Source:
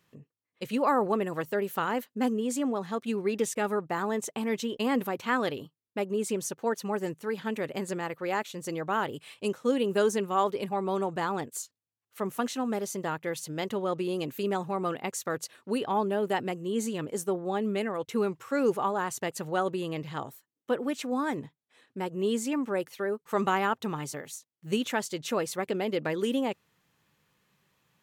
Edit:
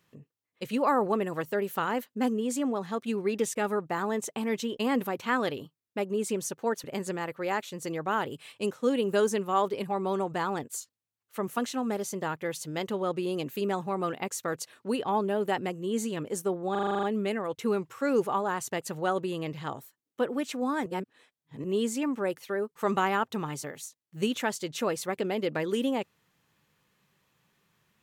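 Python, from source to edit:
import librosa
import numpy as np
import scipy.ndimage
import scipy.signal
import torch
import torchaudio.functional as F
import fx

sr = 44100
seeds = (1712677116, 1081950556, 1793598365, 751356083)

y = fx.edit(x, sr, fx.cut(start_s=6.84, length_s=0.82),
    fx.stutter(start_s=17.53, slice_s=0.04, count=9),
    fx.reverse_span(start_s=21.36, length_s=0.78), tone=tone)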